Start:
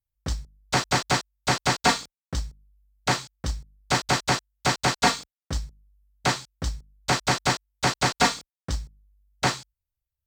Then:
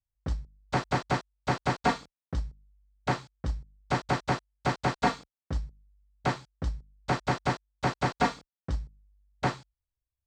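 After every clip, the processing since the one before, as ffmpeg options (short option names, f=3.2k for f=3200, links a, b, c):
-af "lowpass=f=1.1k:p=1,volume=-2dB"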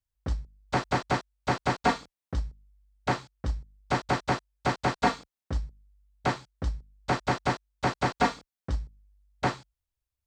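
-af "equalizer=f=150:t=o:w=0.45:g=-4.5,volume=1.5dB"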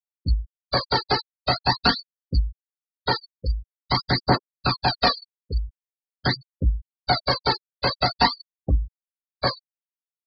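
-af "aphaser=in_gain=1:out_gain=1:delay=2.5:decay=0.55:speed=0.46:type=triangular,lowpass=f=4.6k:t=q:w=7.8,afftfilt=real='re*gte(hypot(re,im),0.0708)':imag='im*gte(hypot(re,im),0.0708)':win_size=1024:overlap=0.75,volume=2.5dB"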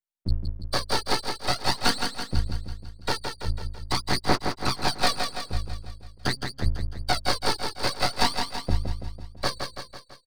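-af "aeval=exprs='max(val(0),0)':c=same,aecho=1:1:166|332|498|664|830|996|1162:0.501|0.276|0.152|0.0834|0.0459|0.0252|0.0139"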